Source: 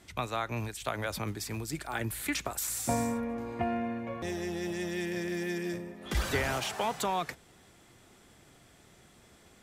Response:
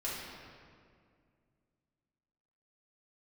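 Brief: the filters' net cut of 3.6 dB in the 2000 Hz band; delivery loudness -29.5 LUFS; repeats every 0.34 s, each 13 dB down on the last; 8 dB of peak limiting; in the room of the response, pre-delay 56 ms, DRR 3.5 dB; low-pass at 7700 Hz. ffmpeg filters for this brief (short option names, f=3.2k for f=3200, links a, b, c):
-filter_complex "[0:a]lowpass=7.7k,equalizer=f=2k:t=o:g=-4.5,alimiter=level_in=1dB:limit=-24dB:level=0:latency=1,volume=-1dB,aecho=1:1:340|680|1020:0.224|0.0493|0.0108,asplit=2[a][b];[1:a]atrim=start_sample=2205,adelay=56[c];[b][c]afir=irnorm=-1:irlink=0,volume=-7.5dB[d];[a][d]amix=inputs=2:normalize=0,volume=5.5dB"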